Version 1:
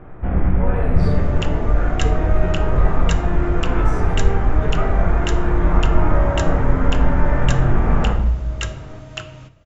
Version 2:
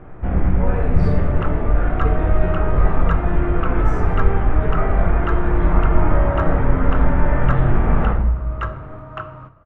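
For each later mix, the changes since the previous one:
speech −6.0 dB
second sound: add low-pass with resonance 1,200 Hz, resonance Q 4.6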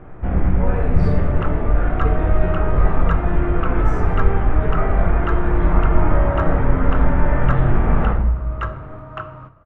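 nothing changed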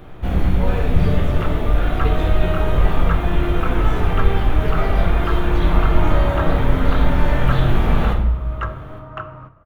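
first sound: remove low-pass filter 2,000 Hz 24 dB per octave

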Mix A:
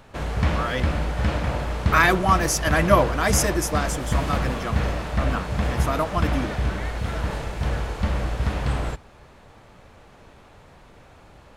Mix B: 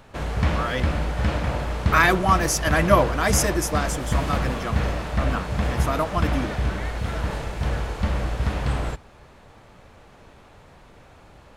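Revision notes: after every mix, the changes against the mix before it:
nothing changed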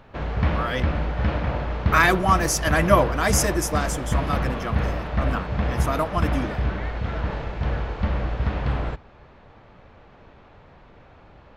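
background: add Gaussian smoothing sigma 2 samples

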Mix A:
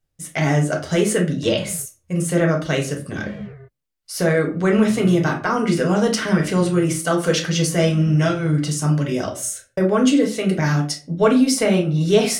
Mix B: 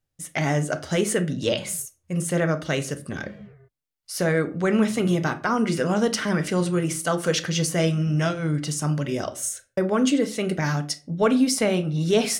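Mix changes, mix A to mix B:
speech: send −9.5 dB
background −11.0 dB

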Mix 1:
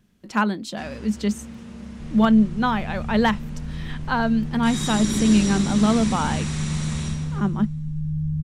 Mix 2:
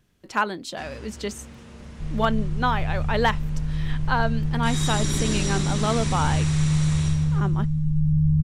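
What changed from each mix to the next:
second sound +8.0 dB
master: add parametric band 210 Hz −13.5 dB 0.38 octaves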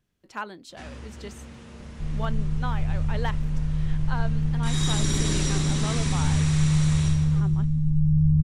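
speech −10.5 dB
second sound: remove Chebyshev band-stop filter 210–910 Hz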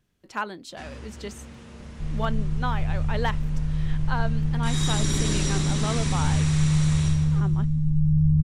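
speech +4.0 dB

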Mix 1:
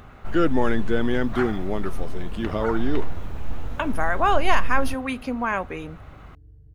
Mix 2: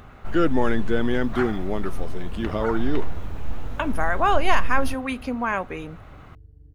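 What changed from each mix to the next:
second sound: entry +0.80 s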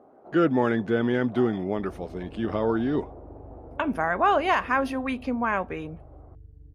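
first sound: add Chebyshev band-pass filter 310–720 Hz, order 2
master: add low-pass filter 2,600 Hz 6 dB per octave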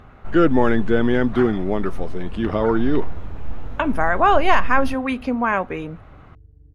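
speech +5.5 dB
first sound: remove Chebyshev band-pass filter 310–720 Hz, order 2

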